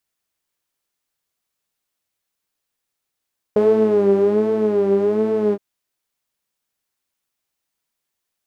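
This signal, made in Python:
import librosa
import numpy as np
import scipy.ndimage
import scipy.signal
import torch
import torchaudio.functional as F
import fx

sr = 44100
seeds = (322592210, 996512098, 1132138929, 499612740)

y = fx.sub_patch_vibrato(sr, seeds[0], note=56, wave='saw', wave2='saw', interval_st=0, detune_cents=30, level2_db=-9.0, sub_db=-19, noise_db=-12, kind='bandpass', cutoff_hz=330.0, q=4.2, env_oct=0.5, env_decay_s=0.27, env_sustain_pct=40, attack_ms=2.9, decay_s=1.11, sustain_db=-3, release_s=0.05, note_s=1.97, lfo_hz=1.3, vibrato_cents=92)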